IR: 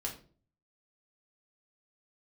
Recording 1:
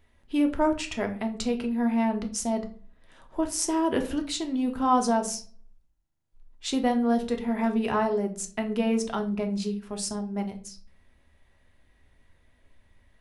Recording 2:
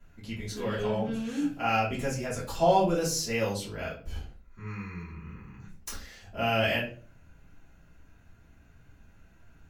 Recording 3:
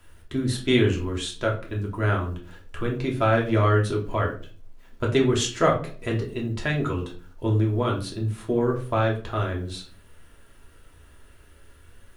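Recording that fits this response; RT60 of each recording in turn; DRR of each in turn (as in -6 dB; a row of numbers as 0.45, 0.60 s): 3; 0.40, 0.40, 0.40 s; 4.0, -11.0, -1.5 dB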